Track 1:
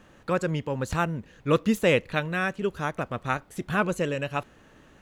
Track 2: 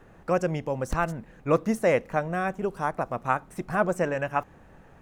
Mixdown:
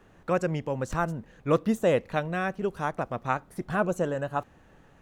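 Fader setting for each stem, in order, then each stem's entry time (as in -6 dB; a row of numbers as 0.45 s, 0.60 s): -8.0 dB, -5.5 dB; 0.00 s, 0.00 s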